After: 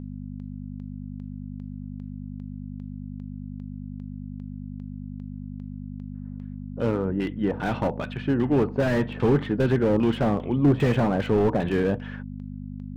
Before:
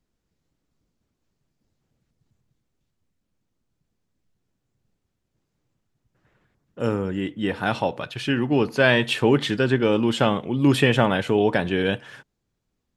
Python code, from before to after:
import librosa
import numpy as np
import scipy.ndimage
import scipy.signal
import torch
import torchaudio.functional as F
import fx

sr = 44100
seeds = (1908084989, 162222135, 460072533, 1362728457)

y = fx.dmg_buzz(x, sr, base_hz=50.0, harmonics=5, level_db=-36.0, tilt_db=0, odd_only=False)
y = fx.filter_lfo_lowpass(y, sr, shape='saw_down', hz=2.5, low_hz=700.0, high_hz=3700.0, q=0.9)
y = fx.slew_limit(y, sr, full_power_hz=56.0)